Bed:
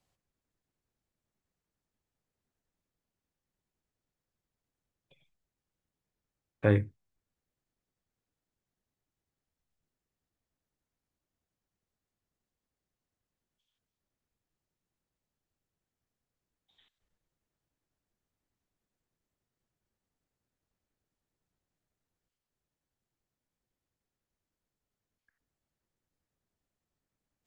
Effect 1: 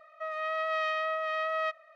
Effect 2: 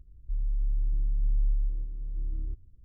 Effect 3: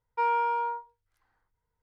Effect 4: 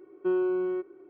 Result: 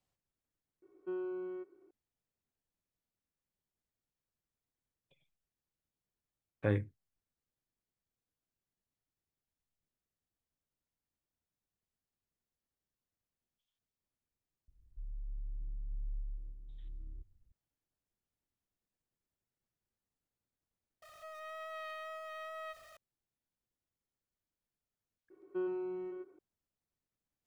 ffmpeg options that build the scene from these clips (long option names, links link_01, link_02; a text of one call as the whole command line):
ffmpeg -i bed.wav -i cue0.wav -i cue1.wav -i cue2.wav -i cue3.wav -filter_complex "[4:a]asplit=2[link_01][link_02];[0:a]volume=-7dB[link_03];[1:a]aeval=exprs='val(0)+0.5*0.0133*sgn(val(0))':channel_layout=same[link_04];[link_02]aecho=1:1:121:0.562[link_05];[link_01]atrim=end=1.09,asetpts=PTS-STARTPTS,volume=-13dB,afade=type=in:duration=0.004:curve=hsin,afade=type=out:start_time=1.086:duration=0.004:curve=hsin,adelay=820[link_06];[2:a]atrim=end=2.84,asetpts=PTS-STARTPTS,volume=-14.5dB,afade=type=in:duration=0.004:curve=hsin,afade=type=out:start_time=2.836:duration=0.004:curve=hsin,adelay=14680[link_07];[link_04]atrim=end=1.95,asetpts=PTS-STARTPTS,volume=-15.5dB,afade=type=in:duration=0.004:curve=hsin,afade=type=out:start_time=1.946:duration=0.004:curve=hsin,adelay=21020[link_08];[link_05]atrim=end=1.09,asetpts=PTS-STARTPTS,volume=-10dB,afade=type=in:duration=0.004:curve=hsin,afade=type=out:start_time=1.086:duration=0.004:curve=hsin,adelay=25300[link_09];[link_03][link_06][link_07][link_08][link_09]amix=inputs=5:normalize=0" out.wav